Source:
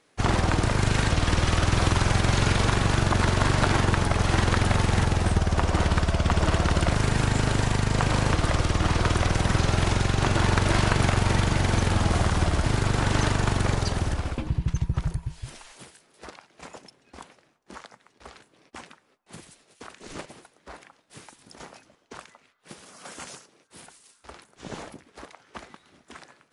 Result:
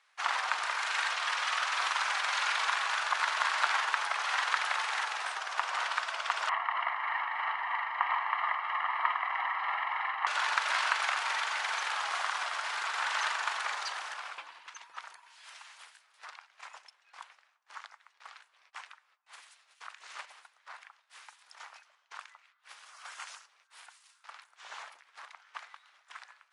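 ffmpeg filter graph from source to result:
-filter_complex "[0:a]asettb=1/sr,asplit=3[s0][s1][s2];[s0]atrim=end=6.494[s3];[s1]atrim=start=6.49:end=10.27,asetpts=PTS-STARTPTS,afade=t=in:d=0.004:c=qsin,afade=t=out:st=3.776:d=0.004:c=qsin,lowpass=f=2300:w=0.5412,lowpass=f=2300:w=1.3066,aecho=1:1:1:0.96,atrim=end_sample=166698,tremolo=f=3.1:d=0.31[s4];[s2]atrim=start=10.266[s5];[s3][s4]acrossfade=d=0.004:c1=hsin:c2=qsin[s6];[s6][s5]acrossfade=d=0.004:c1=qsin:c2=hsin,highpass=f=970:w=0.5412,highpass=f=970:w=1.3066,aemphasis=mode=reproduction:type=50fm"

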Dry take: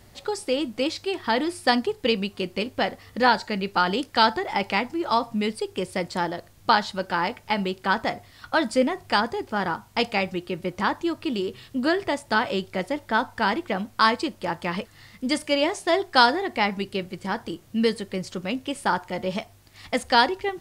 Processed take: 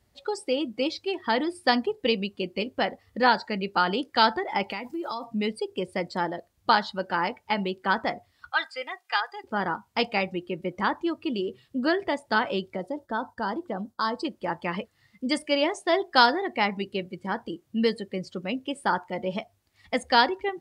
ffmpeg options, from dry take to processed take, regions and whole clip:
-filter_complex "[0:a]asettb=1/sr,asplit=3[s0][s1][s2];[s0]atrim=end=4.704[s3];[s1]atrim=start=4.7:end=5.24,asetpts=PTS-STARTPTS,afade=t=in:d=0.004:c=qsin,afade=t=out:st=0.536:d=0.004:c=qsin,aemphasis=mode=production:type=50kf,acompressor=threshold=0.0501:ratio=10:attack=3.2:release=140:knee=1:detection=peak[s4];[s2]atrim=start=5.236[s5];[s3][s4]acrossfade=d=0.004:c1=hsin:c2=qsin[s6];[s6][s5]acrossfade=d=0.004:c1=qsin:c2=hsin,asettb=1/sr,asplit=3[s7][s8][s9];[s7]atrim=end=8.504[s10];[s8]atrim=start=8.5:end=9.44,asetpts=PTS-STARTPTS,afade=t=in:d=0.004:c=qsin,afade=t=out:st=0.936:d=0.004:c=qsin,acrossover=split=4500[s11][s12];[s12]acompressor=threshold=0.00631:ratio=4:attack=1:release=60[s13];[s11][s13]amix=inputs=2:normalize=0,highpass=1100,aecho=1:1:2.5:0.52,atrim=end_sample=41454[s14];[s9]atrim=start=9.436[s15];[s10][s14]acrossfade=d=0.004:c1=hsin:c2=qsin[s16];[s16][s15]acrossfade=d=0.004:c1=qsin:c2=hsin,asettb=1/sr,asplit=3[s17][s18][s19];[s17]atrim=end=12.764[s20];[s18]atrim=start=12.76:end=14.25,asetpts=PTS-STARTPTS,afade=t=in:d=0.004:c=qsin,afade=t=out:st=1.486:d=0.004:c=qsin,agate=range=0.0224:threshold=0.00447:ratio=3:release=100:detection=peak,equalizer=f=2300:w=1.8:g=-11.5,acompressor=threshold=0.0398:ratio=1.5:attack=3.2:release=140:knee=1:detection=peak[s21];[s19]atrim=start=14.246[s22];[s20][s21]acrossfade=d=0.004:c1=hsin:c2=qsin[s23];[s23][s22]acrossfade=d=0.004:c1=qsin:c2=hsin,afftdn=nr=15:nf=-37,highpass=58,equalizer=f=110:w=3:g=-12.5,volume=0.841"

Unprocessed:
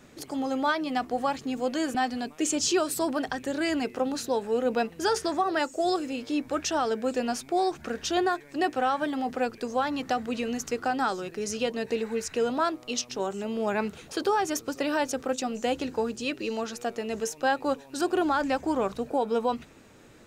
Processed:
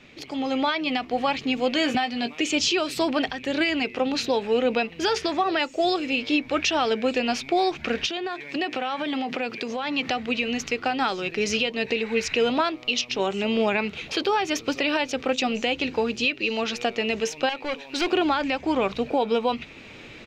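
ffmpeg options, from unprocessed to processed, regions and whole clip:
-filter_complex "[0:a]asettb=1/sr,asplit=3[s0][s1][s2];[s0]atrim=end=1.764[s3];[s1]atrim=start=1.76:end=2.41,asetpts=PTS-STARTPTS,afade=t=in:d=0.004:c=qsin,afade=t=out:st=0.646:d=0.004:c=qsin,highpass=73,asplit=2[s4][s5];[s5]adelay=17,volume=0.355[s6];[s4][s6]amix=inputs=2:normalize=0,atrim=end_sample=28665[s7];[s2]atrim=start=2.406[s8];[s3][s7]acrossfade=d=0.004:c1=hsin:c2=qsin[s9];[s9][s8]acrossfade=d=0.004:c1=qsin:c2=hsin,asettb=1/sr,asplit=3[s10][s11][s12];[s10]atrim=end=8.064[s13];[s11]atrim=start=8.06:end=10.08,asetpts=PTS-STARTPTS,afade=t=in:d=0.004:c=qsin,afade=t=out:st=2.016:d=0.004:c=qsin,highpass=f=130:w=0.5412,highpass=f=130:w=1.3066,acompressor=threshold=0.0251:ratio=8:attack=3.2:release=140:knee=1:detection=peak[s14];[s12]atrim=start=10.076[s15];[s13][s14]acrossfade=d=0.004:c1=hsin:c2=qsin[s16];[s16][s15]acrossfade=d=0.004:c1=qsin:c2=hsin,asettb=1/sr,asplit=3[s17][s18][s19];[s17]atrim=end=17.494[s20];[s18]atrim=start=17.49:end=18.12,asetpts=PTS-STARTPTS,afade=t=in:d=0.004:c=qsin,afade=t=out:st=0.626:d=0.004:c=qsin,equalizer=f=80:w=0.64:g=-12.5,aeval=exprs='(tanh(28.2*val(0)+0.15)-tanh(0.15))/28.2':c=same[s21];[s19]atrim=start=18.116[s22];[s20][s21]acrossfade=d=0.004:c1=hsin:c2=qsin[s23];[s23][s22]acrossfade=d=0.004:c1=qsin:c2=hsin,firequalizer=gain_entry='entry(1600,0);entry(2300,13);entry(8800,-14)':delay=0.05:min_phase=1,alimiter=limit=0.0891:level=0:latency=1:release=433,dynaudnorm=f=370:g=3:m=2.51"

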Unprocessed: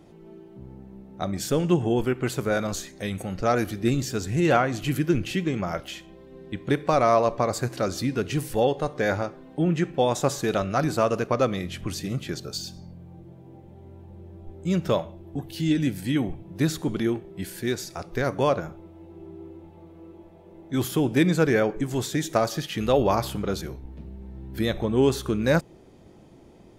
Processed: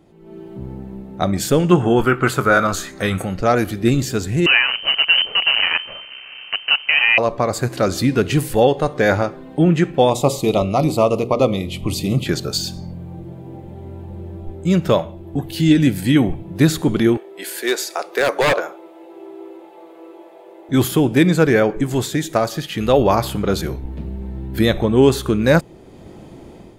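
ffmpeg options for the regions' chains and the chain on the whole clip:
-filter_complex "[0:a]asettb=1/sr,asplit=3[s0][s1][s2];[s0]atrim=end=1.714[s3];[s1]atrim=start=1.71:end=3.25,asetpts=PTS-STARTPTS,afade=t=in:d=0.004:c=qsin,afade=t=out:st=1.536:d=0.004:c=qsin,equalizer=f=1300:w=2.3:g=13,asplit=2[s4][s5];[s5]adelay=22,volume=0.237[s6];[s4][s6]amix=inputs=2:normalize=0,atrim=end_sample=67914[s7];[s2]atrim=start=3.246[s8];[s3][s7]acrossfade=d=0.004:c1=hsin:c2=qsin[s9];[s9][s8]acrossfade=d=0.004:c1=qsin:c2=hsin,asettb=1/sr,asplit=3[s10][s11][s12];[s10]atrim=end=4.464[s13];[s11]atrim=start=4.46:end=7.18,asetpts=PTS-STARTPTS,afade=t=in:d=0.004:c=qsin,afade=t=out:st=2.716:d=0.004:c=qsin,lowshelf=f=130:g=5.5,acrusher=bits=5:dc=4:mix=0:aa=0.000001,lowpass=f=2600:t=q:w=0.5098,lowpass=f=2600:t=q:w=0.6013,lowpass=f=2600:t=q:w=0.9,lowpass=f=2600:t=q:w=2.563,afreqshift=-3100[s14];[s12]atrim=start=7.176[s15];[s13][s14]acrossfade=d=0.004:c1=hsin:c2=qsin[s16];[s16][s15]acrossfade=d=0.004:c1=qsin:c2=hsin,asettb=1/sr,asplit=3[s17][s18][s19];[s17]atrim=end=10.104[s20];[s18]atrim=start=10.1:end=12.26,asetpts=PTS-STARTPTS,afade=t=in:d=0.004:c=qsin,afade=t=out:st=2.156:d=0.004:c=qsin,asuperstop=centerf=1600:order=4:qfactor=1.4,equalizer=f=6400:w=2:g=-4,bandreject=f=60:t=h:w=6,bandreject=f=120:t=h:w=6,bandreject=f=180:t=h:w=6,bandreject=f=240:t=h:w=6,bandreject=f=300:t=h:w=6,bandreject=f=360:t=h:w=6,bandreject=f=420:t=h:w=6,bandreject=f=480:t=h:w=6,bandreject=f=540:t=h:w=6[s21];[s19]atrim=start=12.256[s22];[s20][s21]acrossfade=d=0.004:c1=hsin:c2=qsin[s23];[s23][s22]acrossfade=d=0.004:c1=qsin:c2=hsin,asettb=1/sr,asplit=3[s24][s25][s26];[s24]atrim=end=17.174[s27];[s25]atrim=start=17.17:end=20.69,asetpts=PTS-STARTPTS,afade=t=in:d=0.004:c=qsin,afade=t=out:st=3.516:d=0.004:c=qsin,highpass=f=400:w=0.5412,highpass=f=400:w=1.3066,aeval=exprs='0.0891*(abs(mod(val(0)/0.0891+3,4)-2)-1)':c=same[s28];[s26]atrim=start=20.686[s29];[s27][s28]acrossfade=d=0.004:c1=hsin:c2=qsin[s30];[s30][s29]acrossfade=d=0.004:c1=qsin:c2=hsin,dynaudnorm=f=130:g=5:m=4.47,equalizer=f=5700:t=o:w=0.27:g=-5,volume=0.891"

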